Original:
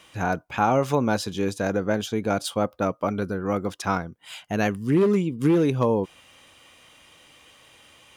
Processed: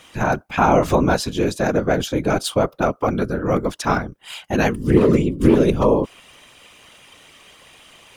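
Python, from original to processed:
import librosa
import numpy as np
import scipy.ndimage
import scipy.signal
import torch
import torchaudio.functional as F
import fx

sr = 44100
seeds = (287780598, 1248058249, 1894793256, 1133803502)

y = fx.whisperise(x, sr, seeds[0])
y = F.gain(torch.from_numpy(y), 5.5).numpy()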